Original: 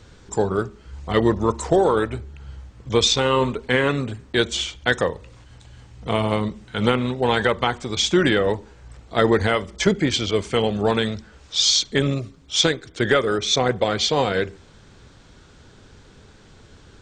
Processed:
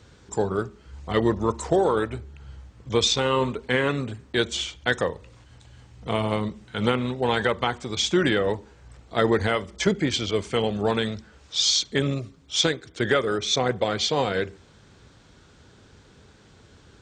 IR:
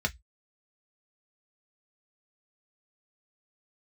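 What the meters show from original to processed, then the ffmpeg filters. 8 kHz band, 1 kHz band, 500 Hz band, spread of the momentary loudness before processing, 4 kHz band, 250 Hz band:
−3.5 dB, −3.5 dB, −3.5 dB, 11 LU, −3.5 dB, −3.5 dB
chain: -af "highpass=50,volume=-3.5dB"

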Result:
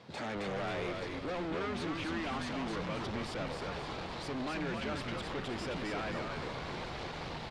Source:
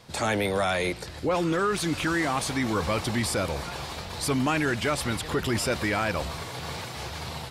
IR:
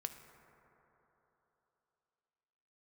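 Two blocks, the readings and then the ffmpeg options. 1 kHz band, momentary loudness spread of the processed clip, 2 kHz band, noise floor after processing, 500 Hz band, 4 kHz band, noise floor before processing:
−9.5 dB, 4 LU, −11.0 dB, −42 dBFS, −10.0 dB, −10.0 dB, −39 dBFS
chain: -filter_complex "[0:a]lowshelf=frequency=430:gain=6,asoftclip=type=tanh:threshold=-32dB,highpass=170,lowpass=3900,asplit=2[link_01][link_02];[link_02]asplit=6[link_03][link_04][link_05][link_06][link_07][link_08];[link_03]adelay=266,afreqshift=-86,volume=-3.5dB[link_09];[link_04]adelay=532,afreqshift=-172,volume=-10.4dB[link_10];[link_05]adelay=798,afreqshift=-258,volume=-17.4dB[link_11];[link_06]adelay=1064,afreqshift=-344,volume=-24.3dB[link_12];[link_07]adelay=1330,afreqshift=-430,volume=-31.2dB[link_13];[link_08]adelay=1596,afreqshift=-516,volume=-38.2dB[link_14];[link_09][link_10][link_11][link_12][link_13][link_14]amix=inputs=6:normalize=0[link_15];[link_01][link_15]amix=inputs=2:normalize=0,volume=-3.5dB"

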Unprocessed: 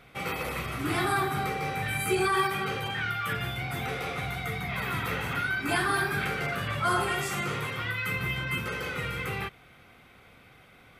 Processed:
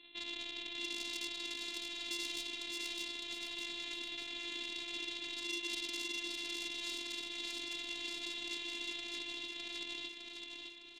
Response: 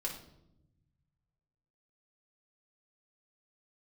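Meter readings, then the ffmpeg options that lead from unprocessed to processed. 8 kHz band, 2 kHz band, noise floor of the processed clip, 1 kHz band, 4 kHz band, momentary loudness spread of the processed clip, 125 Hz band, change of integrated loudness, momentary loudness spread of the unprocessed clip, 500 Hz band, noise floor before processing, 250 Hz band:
−6.0 dB, −14.0 dB, −50 dBFS, −26.0 dB, 0.0 dB, 3 LU, below −35 dB, −10.5 dB, 6 LU, −19.0 dB, −55 dBFS, −14.0 dB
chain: -af "aresample=8000,acrusher=samples=13:mix=1:aa=0.000001,aresample=44100,asoftclip=type=tanh:threshold=-27dB,aecho=1:1:608|1216|1824|2432|3040:0.668|0.247|0.0915|0.0339|0.0125,acompressor=threshold=-37dB:ratio=10,highpass=170,afftfilt=real='hypot(re,im)*cos(PI*b)':imag='0':win_size=512:overlap=0.75,aexciter=amount=11.8:drive=7.4:freq=2300,volume=-5dB"

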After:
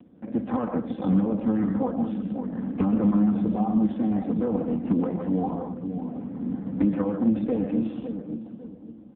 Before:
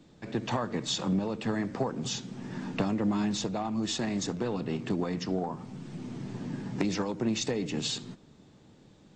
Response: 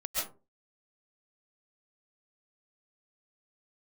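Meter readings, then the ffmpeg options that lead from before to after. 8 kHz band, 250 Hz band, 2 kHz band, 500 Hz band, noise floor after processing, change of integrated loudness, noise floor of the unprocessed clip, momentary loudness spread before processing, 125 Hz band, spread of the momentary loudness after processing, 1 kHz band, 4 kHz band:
below −40 dB, +8.5 dB, can't be measured, +3.5 dB, −45 dBFS, +6.0 dB, −57 dBFS, 10 LU, +4.5 dB, 11 LU, +2.5 dB, below −20 dB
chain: -filter_complex "[0:a]lowpass=1100,lowshelf=frequency=280:gain=5,bandreject=frequency=410:width=12,aecho=1:1:3.9:0.73,asplit=2[link_01][link_02];[link_02]adelay=553,lowpass=frequency=810:poles=1,volume=-7dB,asplit=2[link_03][link_04];[link_04]adelay=553,lowpass=frequency=810:poles=1,volume=0.36,asplit=2[link_05][link_06];[link_06]adelay=553,lowpass=frequency=810:poles=1,volume=0.36,asplit=2[link_07][link_08];[link_08]adelay=553,lowpass=frequency=810:poles=1,volume=0.36[link_09];[link_01][link_03][link_05][link_07][link_09]amix=inputs=5:normalize=0,asplit=2[link_10][link_11];[1:a]atrim=start_sample=2205,lowshelf=frequency=350:gain=-6.5[link_12];[link_11][link_12]afir=irnorm=-1:irlink=0,volume=-5.5dB[link_13];[link_10][link_13]amix=inputs=2:normalize=0,aeval=exprs='0.224*(abs(mod(val(0)/0.224+3,4)-2)-1)':channel_layout=same" -ar 8000 -c:a libopencore_amrnb -b:a 5150

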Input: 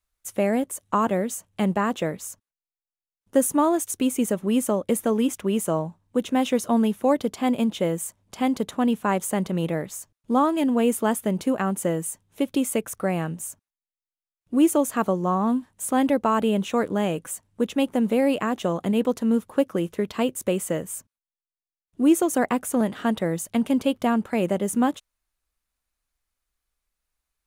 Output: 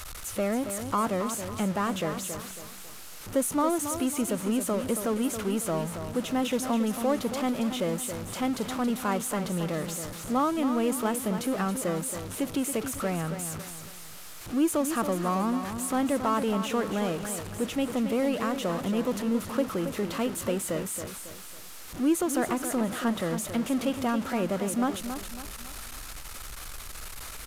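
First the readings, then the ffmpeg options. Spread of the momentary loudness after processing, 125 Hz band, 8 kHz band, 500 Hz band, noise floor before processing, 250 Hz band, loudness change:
13 LU, −3.5 dB, −1.5 dB, −5.0 dB, below −85 dBFS, −5.0 dB, −5.0 dB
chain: -af "aeval=exprs='val(0)+0.5*0.0501*sgn(val(0))':channel_layout=same,equalizer=frequency=1300:width_type=o:width=0.24:gain=5,aecho=1:1:275|550|825|1100:0.355|0.142|0.0568|0.0227,aresample=32000,aresample=44100,volume=-7.5dB"

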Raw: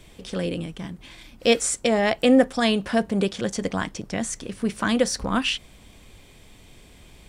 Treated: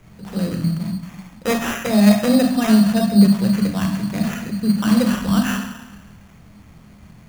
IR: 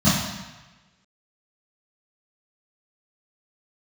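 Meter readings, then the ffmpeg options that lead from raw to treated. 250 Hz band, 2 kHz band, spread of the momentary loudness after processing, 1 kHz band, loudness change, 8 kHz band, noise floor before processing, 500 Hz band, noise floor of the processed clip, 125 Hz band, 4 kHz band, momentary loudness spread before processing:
+9.0 dB, 0.0 dB, 14 LU, +1.0 dB, +5.5 dB, −2.0 dB, −50 dBFS, −1.5 dB, −46 dBFS, +12.0 dB, −1.0 dB, 13 LU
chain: -filter_complex "[0:a]asplit=2[link_01][link_02];[1:a]atrim=start_sample=2205,highshelf=frequency=4500:gain=9,adelay=14[link_03];[link_02][link_03]afir=irnorm=-1:irlink=0,volume=-21.5dB[link_04];[link_01][link_04]amix=inputs=2:normalize=0,acrusher=samples=10:mix=1:aa=0.000001,volume=-3dB"

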